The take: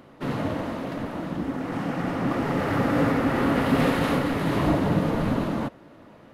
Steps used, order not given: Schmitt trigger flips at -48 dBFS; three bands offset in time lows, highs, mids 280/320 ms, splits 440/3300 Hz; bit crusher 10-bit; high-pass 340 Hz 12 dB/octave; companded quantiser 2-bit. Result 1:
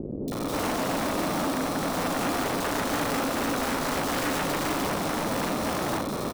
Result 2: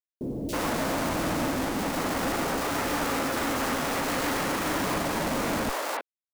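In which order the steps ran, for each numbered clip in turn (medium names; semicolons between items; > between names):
bit crusher > Schmitt trigger > high-pass > companded quantiser > three bands offset in time; high-pass > companded quantiser > Schmitt trigger > three bands offset in time > bit crusher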